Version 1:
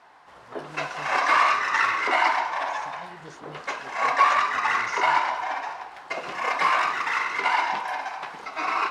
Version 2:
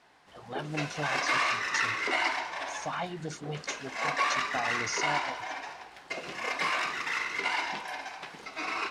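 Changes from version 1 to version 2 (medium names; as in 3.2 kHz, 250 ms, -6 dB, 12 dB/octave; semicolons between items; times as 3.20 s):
speech +8.5 dB; background: add peaking EQ 1 kHz -11.5 dB 1.7 oct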